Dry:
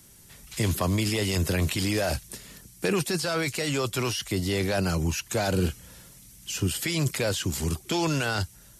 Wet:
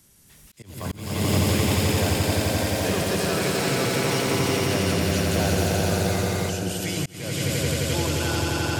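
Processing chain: echo with a slow build-up 87 ms, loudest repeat 5, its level -3 dB; ever faster or slower copies 277 ms, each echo +6 st, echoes 3, each echo -6 dB; slow attack 381 ms; trim -4 dB

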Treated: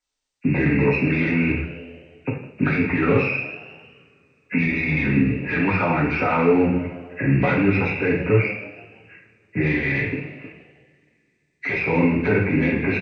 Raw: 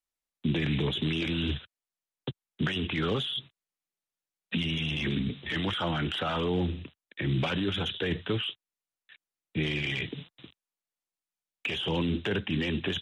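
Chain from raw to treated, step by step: knee-point frequency compression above 1.4 kHz 1.5:1; frequency-shifting echo 157 ms, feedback 49%, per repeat +88 Hz, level -17 dB; two-slope reverb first 0.56 s, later 3.1 s, from -27 dB, DRR -3 dB; trim +6 dB

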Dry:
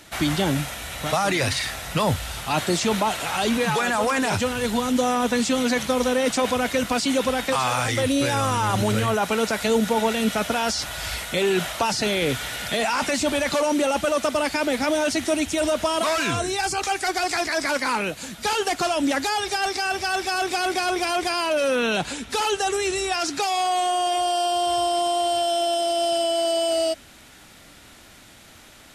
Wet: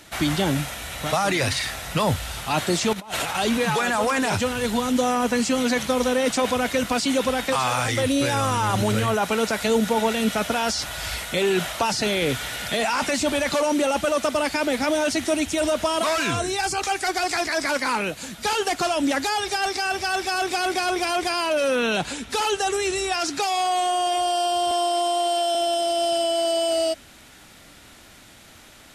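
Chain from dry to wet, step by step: 2.93–3.35 s: compressor with a negative ratio -29 dBFS, ratio -0.5; 5.10–5.59 s: band-stop 3.6 kHz, Q 7.7; 24.71–25.55 s: high-pass 280 Hz 24 dB/octave

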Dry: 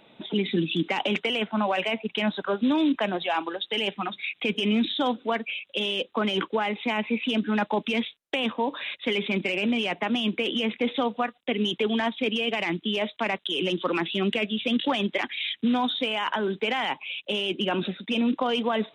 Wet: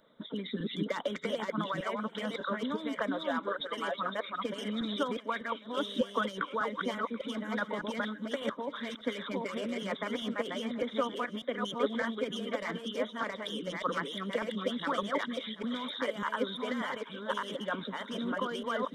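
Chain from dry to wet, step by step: chunks repeated in reverse 601 ms, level -1.5 dB; static phaser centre 520 Hz, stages 8; harmonic-percussive split harmonic -12 dB; thinning echo 732 ms, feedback 56%, high-pass 190 Hz, level -18.5 dB

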